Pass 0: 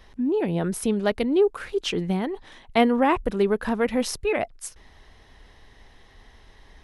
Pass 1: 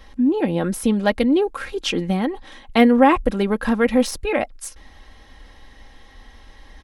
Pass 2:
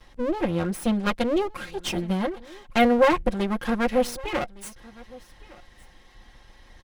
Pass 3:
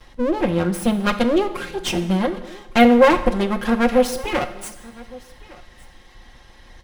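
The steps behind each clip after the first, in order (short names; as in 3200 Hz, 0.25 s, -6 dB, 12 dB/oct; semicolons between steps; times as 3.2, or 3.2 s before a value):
de-esser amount 55%; comb 3.7 ms, depth 54%; gain +4 dB
minimum comb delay 5.6 ms; echo 1.161 s -22.5 dB; gain -4.5 dB
plate-style reverb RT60 0.98 s, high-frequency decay 0.95×, DRR 10 dB; gain +5 dB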